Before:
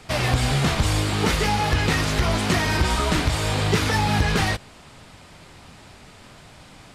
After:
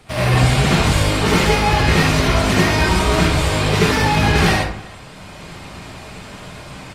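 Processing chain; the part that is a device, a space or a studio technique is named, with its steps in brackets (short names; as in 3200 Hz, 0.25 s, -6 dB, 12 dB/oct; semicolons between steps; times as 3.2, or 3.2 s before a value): speakerphone in a meeting room (reverb RT60 0.50 s, pre-delay 62 ms, DRR -6 dB; speakerphone echo 0.32 s, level -22 dB; AGC gain up to 5.5 dB; gain -1 dB; Opus 32 kbps 48000 Hz)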